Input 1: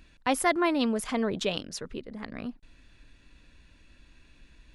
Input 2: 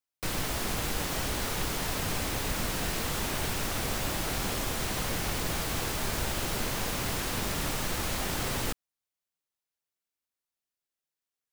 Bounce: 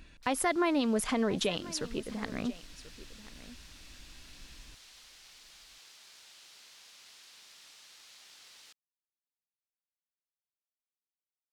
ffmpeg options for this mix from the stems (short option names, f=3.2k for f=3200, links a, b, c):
-filter_complex "[0:a]alimiter=limit=-21dB:level=0:latency=1:release=181,volume=2dB,asplit=3[a][b][c];[b]volume=-18dB[d];[1:a]bandpass=f=4.4k:t=q:w=1.2:csg=0,volume=-15.5dB[e];[c]apad=whole_len=508154[f];[e][f]sidechaincompress=threshold=-28dB:ratio=8:attack=16:release=479[g];[d]aecho=0:1:1037:1[h];[a][g][h]amix=inputs=3:normalize=0"